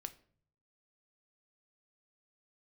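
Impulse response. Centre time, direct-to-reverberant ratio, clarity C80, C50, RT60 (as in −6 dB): 4 ms, 9.0 dB, 21.5 dB, 17.0 dB, 0.55 s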